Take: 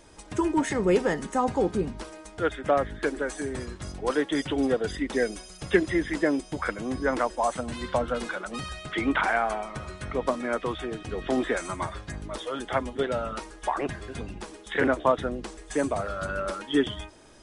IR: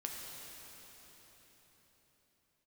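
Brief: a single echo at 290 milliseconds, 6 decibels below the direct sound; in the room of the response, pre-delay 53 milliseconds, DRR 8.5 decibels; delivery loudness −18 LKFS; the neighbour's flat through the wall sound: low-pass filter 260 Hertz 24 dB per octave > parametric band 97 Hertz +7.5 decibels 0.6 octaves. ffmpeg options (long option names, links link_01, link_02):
-filter_complex "[0:a]aecho=1:1:290:0.501,asplit=2[link_01][link_02];[1:a]atrim=start_sample=2205,adelay=53[link_03];[link_02][link_03]afir=irnorm=-1:irlink=0,volume=-8.5dB[link_04];[link_01][link_04]amix=inputs=2:normalize=0,lowpass=frequency=260:width=0.5412,lowpass=frequency=260:width=1.3066,equalizer=frequency=97:width_type=o:width=0.6:gain=7.5,volume=16.5dB"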